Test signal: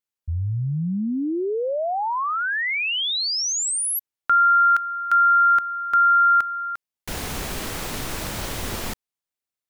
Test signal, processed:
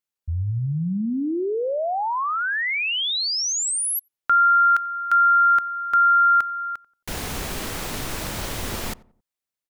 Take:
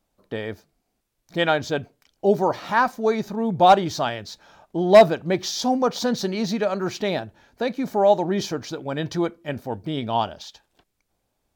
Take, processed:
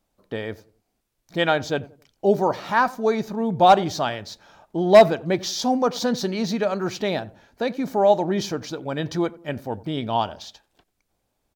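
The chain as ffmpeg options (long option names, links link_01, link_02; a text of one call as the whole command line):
ffmpeg -i in.wav -filter_complex "[0:a]asplit=2[link_01][link_02];[link_02]adelay=90,lowpass=frequency=980:poles=1,volume=-19dB,asplit=2[link_03][link_04];[link_04]adelay=90,lowpass=frequency=980:poles=1,volume=0.39,asplit=2[link_05][link_06];[link_06]adelay=90,lowpass=frequency=980:poles=1,volume=0.39[link_07];[link_01][link_03][link_05][link_07]amix=inputs=4:normalize=0" out.wav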